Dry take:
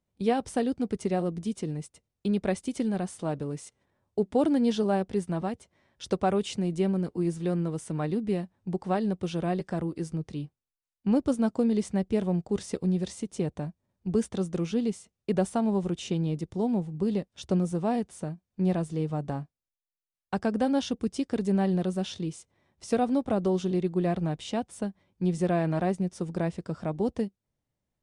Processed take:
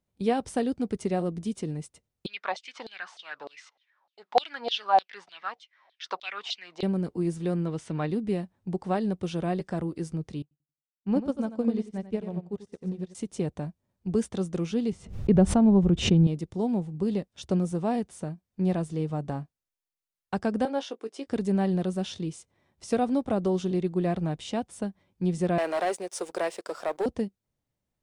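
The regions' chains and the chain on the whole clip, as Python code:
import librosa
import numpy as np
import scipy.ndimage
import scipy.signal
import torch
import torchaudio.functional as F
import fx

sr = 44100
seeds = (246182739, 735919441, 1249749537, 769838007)

y = fx.chain(x, sr, fx.lowpass(hz=5200.0, slope=24),
    fx.filter_lfo_highpass(shape='saw_down', hz=3.3, low_hz=650.0, high_hz=4100.0, q=6.3), at=(2.26, 6.83))
y = fx.chain(y, sr, fx.lowpass(hz=3800.0, slope=12),
    fx.high_shelf(hz=2000.0, db=8.5), at=(7.66, 8.1))
y = fx.chain(y, sr, fx.high_shelf(hz=5700.0, db=-9.5),
    fx.echo_feedback(ms=90, feedback_pct=31, wet_db=-5.5),
    fx.upward_expand(threshold_db=-40.0, expansion=2.5), at=(10.42, 13.15))
y = fx.chain(y, sr, fx.riaa(side='playback'),
    fx.pre_swell(db_per_s=120.0), at=(14.92, 16.27))
y = fx.chain(y, sr, fx.highpass(hz=370.0, slope=24),
    fx.high_shelf(hz=4100.0, db=-10.0),
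    fx.doubler(ms=18.0, db=-11.0), at=(20.65, 21.27))
y = fx.chain(y, sr, fx.highpass(hz=430.0, slope=24),
    fx.high_shelf(hz=8000.0, db=8.0),
    fx.leveller(passes=2), at=(25.58, 27.06))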